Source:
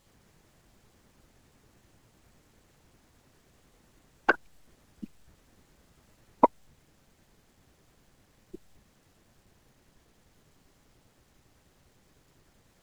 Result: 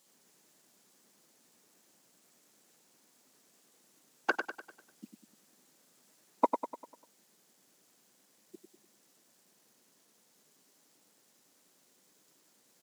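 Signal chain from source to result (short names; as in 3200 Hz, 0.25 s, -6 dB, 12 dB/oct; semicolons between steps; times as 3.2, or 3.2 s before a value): HPF 190 Hz 24 dB/oct; tone controls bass -1 dB, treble +11 dB; on a send: feedback echo 99 ms, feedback 47%, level -7 dB; on the sum: gain -7 dB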